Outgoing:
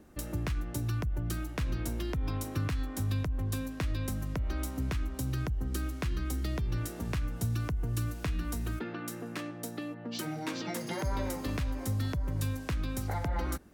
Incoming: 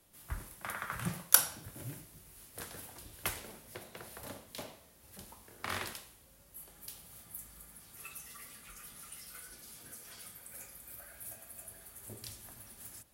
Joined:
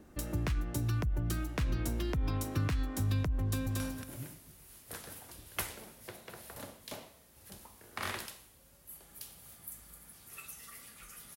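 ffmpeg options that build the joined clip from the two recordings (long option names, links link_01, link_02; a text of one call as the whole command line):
ffmpeg -i cue0.wav -i cue1.wav -filter_complex "[0:a]apad=whole_dur=11.36,atrim=end=11.36,atrim=end=3.802[link_01];[1:a]atrim=start=1.468:end=9.03[link_02];[link_01][link_02]acrossfade=duration=0.004:curve1=hsin:curve2=hsin,asplit=2[link_03][link_04];[link_04]afade=type=in:start_time=3.43:duration=0.01,afade=type=out:start_time=3.8:duration=0.01,aecho=0:1:230|460|690:0.841395|0.168279|0.0336558[link_05];[link_03][link_05]amix=inputs=2:normalize=0" out.wav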